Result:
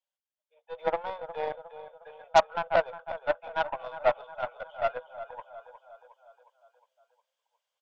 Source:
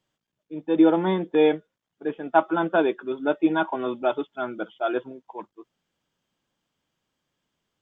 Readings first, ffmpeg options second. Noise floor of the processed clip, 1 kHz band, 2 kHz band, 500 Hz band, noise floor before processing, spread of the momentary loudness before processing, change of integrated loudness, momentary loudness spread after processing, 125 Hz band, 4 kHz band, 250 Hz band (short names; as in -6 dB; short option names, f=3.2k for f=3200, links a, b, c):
under -85 dBFS, -2.0 dB, -4.0 dB, -6.0 dB, -84 dBFS, 17 LU, -6.0 dB, 22 LU, -14.0 dB, n/a, -27.5 dB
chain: -filter_complex "[0:a]acrossover=split=1600[a][b];[a]asuperpass=centerf=910:order=20:qfactor=0.78[c];[b]acompressor=threshold=-46dB:ratio=10[d];[c][d]amix=inputs=2:normalize=0,aecho=1:1:360|720|1080|1440|1800|2160:0.355|0.195|0.107|0.059|0.0325|0.0179,aeval=exprs='0.422*(cos(1*acos(clip(val(0)/0.422,-1,1)))-cos(1*PI/2))+0.0422*(cos(5*acos(clip(val(0)/0.422,-1,1)))-cos(5*PI/2))+0.0376*(cos(6*acos(clip(val(0)/0.422,-1,1)))-cos(6*PI/2))+0.0668*(cos(7*acos(clip(val(0)/0.422,-1,1)))-cos(7*PI/2))+0.0335*(cos(8*acos(clip(val(0)/0.422,-1,1)))-cos(8*PI/2))':c=same,dynaudnorm=f=530:g=3:m=10dB,volume=-7dB"